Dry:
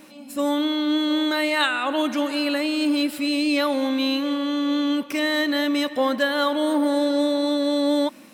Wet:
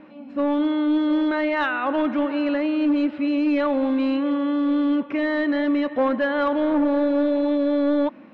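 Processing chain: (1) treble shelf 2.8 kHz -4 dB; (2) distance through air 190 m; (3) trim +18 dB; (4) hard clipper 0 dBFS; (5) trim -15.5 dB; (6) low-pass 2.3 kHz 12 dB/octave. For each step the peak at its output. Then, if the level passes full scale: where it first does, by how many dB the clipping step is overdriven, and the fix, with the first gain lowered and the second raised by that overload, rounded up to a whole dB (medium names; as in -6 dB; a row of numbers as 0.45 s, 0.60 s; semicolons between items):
-9.0 dBFS, -10.0 dBFS, +8.0 dBFS, 0.0 dBFS, -15.5 dBFS, -15.0 dBFS; step 3, 8.0 dB; step 3 +10 dB, step 5 -7.5 dB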